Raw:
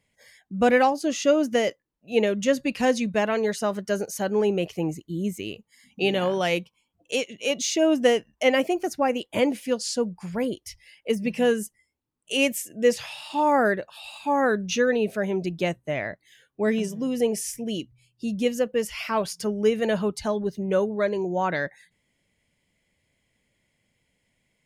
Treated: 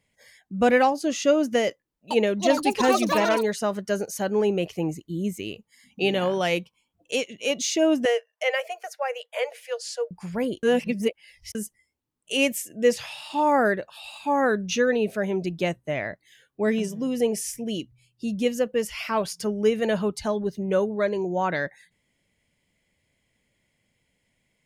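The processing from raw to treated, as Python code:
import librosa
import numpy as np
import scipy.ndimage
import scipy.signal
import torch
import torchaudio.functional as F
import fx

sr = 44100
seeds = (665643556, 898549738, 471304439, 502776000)

y = fx.echo_pitch(x, sr, ms=466, semitones=7, count=2, db_per_echo=-3.0, at=(1.64, 3.56))
y = fx.cheby_ripple_highpass(y, sr, hz=450.0, ripple_db=6, at=(8.05, 10.11))
y = fx.edit(y, sr, fx.reverse_span(start_s=10.63, length_s=0.92), tone=tone)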